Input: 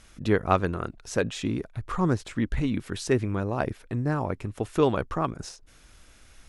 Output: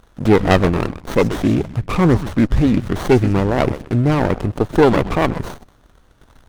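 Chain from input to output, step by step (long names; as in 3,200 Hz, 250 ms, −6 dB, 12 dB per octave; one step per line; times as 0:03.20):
echo with shifted repeats 127 ms, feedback 35%, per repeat −130 Hz, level −14 dB
leveller curve on the samples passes 2
windowed peak hold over 17 samples
level +5.5 dB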